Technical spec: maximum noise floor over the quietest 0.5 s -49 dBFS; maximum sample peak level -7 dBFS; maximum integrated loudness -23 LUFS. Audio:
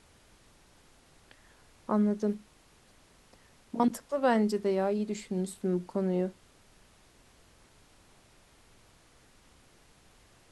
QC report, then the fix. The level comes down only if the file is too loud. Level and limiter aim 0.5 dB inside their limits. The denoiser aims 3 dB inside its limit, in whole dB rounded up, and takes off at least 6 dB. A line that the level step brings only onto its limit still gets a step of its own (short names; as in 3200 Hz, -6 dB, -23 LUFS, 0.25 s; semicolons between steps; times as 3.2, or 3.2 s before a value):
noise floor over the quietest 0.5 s -61 dBFS: OK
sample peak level -13.0 dBFS: OK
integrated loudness -30.5 LUFS: OK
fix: none